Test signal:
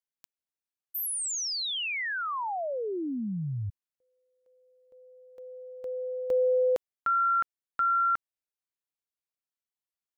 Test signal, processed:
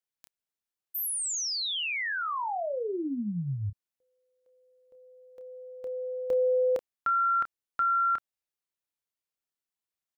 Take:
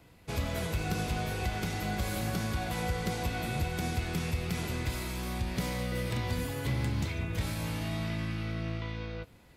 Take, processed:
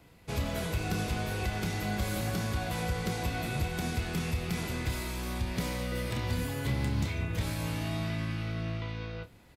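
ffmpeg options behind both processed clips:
-filter_complex "[0:a]asplit=2[a][b];[b]adelay=29,volume=-10dB[c];[a][c]amix=inputs=2:normalize=0"

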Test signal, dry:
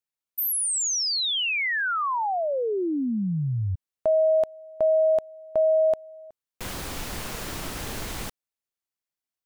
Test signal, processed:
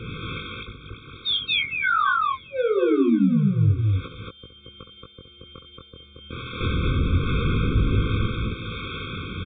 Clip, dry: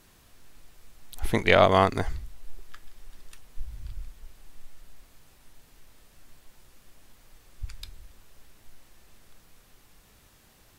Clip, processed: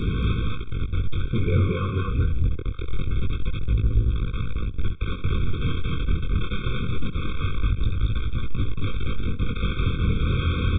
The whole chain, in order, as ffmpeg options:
-filter_complex "[0:a]aeval=exprs='val(0)+0.5*0.1*sgn(val(0))':c=same,equalizer=f=90:w=0.52:g=14,acompressor=threshold=-21dB:ratio=6:attack=86:release=556:detection=peak,acrossover=split=410[a][b];[a]aeval=exprs='val(0)*(1-0.5/2+0.5/2*cos(2*PI*1.3*n/s))':c=same[c];[b]aeval=exprs='val(0)*(1-0.5/2-0.5/2*cos(2*PI*1.3*n/s))':c=same[d];[c][d]amix=inputs=2:normalize=0,aresample=8000,asoftclip=type=tanh:threshold=-19dB,aresample=44100,flanger=delay=18:depth=6.5:speed=0.24,asplit=2[e][f];[f]aecho=0:1:67.06|227.4:0.355|0.891[g];[e][g]amix=inputs=2:normalize=0,afftfilt=real='re*eq(mod(floor(b*sr/1024/530),2),0)':imag='im*eq(mod(floor(b*sr/1024/530),2),0)':win_size=1024:overlap=0.75,volume=6dB"

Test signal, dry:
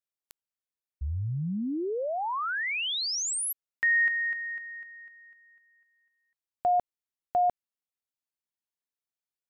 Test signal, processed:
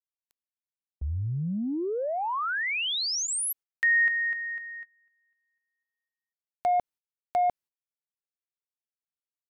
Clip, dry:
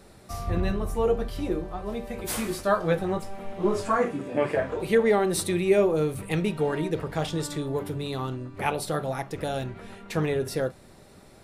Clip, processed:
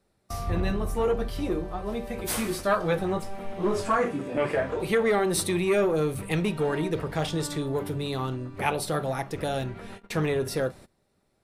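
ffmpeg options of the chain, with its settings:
-filter_complex "[0:a]agate=range=-21dB:threshold=-41dB:ratio=16:release=170:detection=rms,bandreject=f=7.1k:w=22,acrossover=split=1200[a][b];[a]asoftclip=type=tanh:threshold=-20.5dB[c];[c][b]amix=inputs=2:normalize=0,volume=1.5dB"

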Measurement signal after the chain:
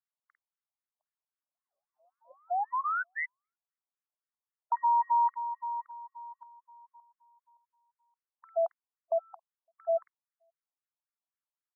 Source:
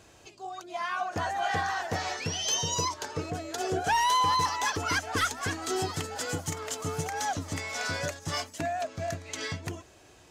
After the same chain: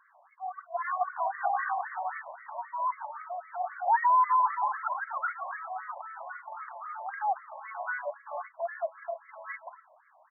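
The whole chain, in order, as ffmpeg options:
-filter_complex "[0:a]acrossover=split=190|1900[a][b][c];[c]adelay=50[d];[a]adelay=560[e];[e][b][d]amix=inputs=3:normalize=0,aeval=exprs='0.158*(cos(1*acos(clip(val(0)/0.158,-1,1)))-cos(1*PI/2))+0.00282*(cos(4*acos(clip(val(0)/0.158,-1,1)))-cos(4*PI/2))':c=same,afftfilt=real='re*between(b*sr/1024,770*pow(1600/770,0.5+0.5*sin(2*PI*3.8*pts/sr))/1.41,770*pow(1600/770,0.5+0.5*sin(2*PI*3.8*pts/sr))*1.41)':imag='im*between(b*sr/1024,770*pow(1600/770,0.5+0.5*sin(2*PI*3.8*pts/sr))/1.41,770*pow(1600/770,0.5+0.5*sin(2*PI*3.8*pts/sr))*1.41)':win_size=1024:overlap=0.75,volume=4dB"

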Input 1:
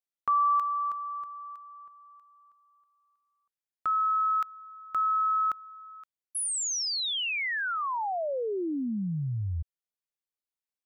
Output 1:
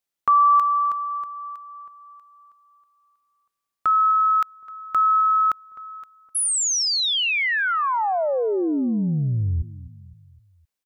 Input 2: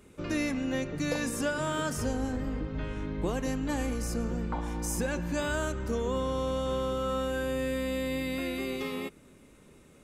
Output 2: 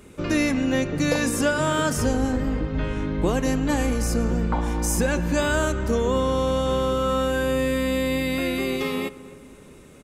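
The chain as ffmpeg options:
-filter_complex "[0:a]asplit=2[a][b];[b]adelay=257,lowpass=f=1.5k:p=1,volume=-16.5dB,asplit=2[c][d];[d]adelay=257,lowpass=f=1.5k:p=1,volume=0.5,asplit=2[e][f];[f]adelay=257,lowpass=f=1.5k:p=1,volume=0.5,asplit=2[g][h];[h]adelay=257,lowpass=f=1.5k:p=1,volume=0.5[i];[a][c][e][g][i]amix=inputs=5:normalize=0,volume=8.5dB"

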